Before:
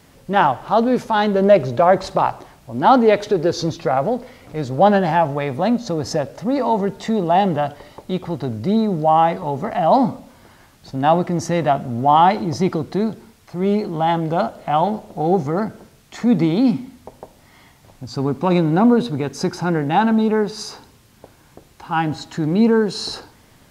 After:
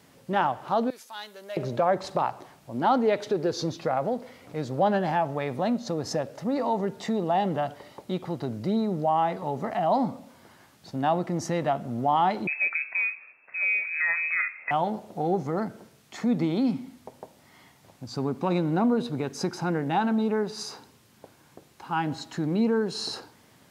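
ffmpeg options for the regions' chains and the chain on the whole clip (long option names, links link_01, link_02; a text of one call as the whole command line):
ffmpeg -i in.wav -filter_complex "[0:a]asettb=1/sr,asplit=3[link_01][link_02][link_03];[link_01]atrim=end=0.904[link_04];[link_02]atrim=start=0.9:end=1.57,asetpts=PTS-STARTPTS,afade=type=in:duration=0.004:curve=qsin,afade=type=out:start_time=0.666:duration=0.004:curve=qsin,highpass=62,aderivative[link_05];[link_03]atrim=start=1.566[link_06];[link_04][link_05]acrossfade=duration=0.004:curve1=hsin:curve2=qsin[link_07];[link_07][link_06]acrossfade=duration=0.004:curve1=qsin:curve2=hsin,asettb=1/sr,asplit=3[link_08][link_09][link_10];[link_08]atrim=end=12.474[link_11];[link_09]atrim=start=12.47:end=14.71,asetpts=PTS-STARTPTS,afade=type=in:duration=0.004:curve=qsin,afade=type=out:start_time=2.236:duration=0.004:curve=qsin,bandreject=frequency=118.3:width_type=h:width=4,bandreject=frequency=236.6:width_type=h:width=4,bandreject=frequency=354.9:width_type=h:width=4,bandreject=frequency=473.2:width_type=h:width=4,bandreject=frequency=591.5:width_type=h:width=4,bandreject=frequency=709.8:width_type=h:width=4,bandreject=frequency=828.1:width_type=h:width=4,bandreject=frequency=946.4:width_type=h:width=4,bandreject=frequency=1064.7:width_type=h:width=4,bandreject=frequency=1183:width_type=h:width=4,bandreject=frequency=1301.3:width_type=h:width=4,bandreject=frequency=1419.6:width_type=h:width=4,bandreject=frequency=1537.9:width_type=h:width=4,bandreject=frequency=1656.2:width_type=h:width=4,bandreject=frequency=1774.5:width_type=h:width=4,bandreject=frequency=1892.8:width_type=h:width=4,bandreject=frequency=2011.1:width_type=h:width=4,lowpass=frequency=2300:width_type=q:width=0.5098,lowpass=frequency=2300:width_type=q:width=0.6013,lowpass=frequency=2300:width_type=q:width=0.9,lowpass=frequency=2300:width_type=q:width=2.563,afreqshift=-2700[link_12];[link_10]atrim=start=14.706[link_13];[link_11][link_12]acrossfade=duration=0.004:curve1=hsin:curve2=qsin[link_14];[link_14][link_13]acrossfade=duration=0.004:curve1=qsin:curve2=hsin,highpass=120,acompressor=threshold=-21dB:ratio=1.5,volume=-5.5dB" out.wav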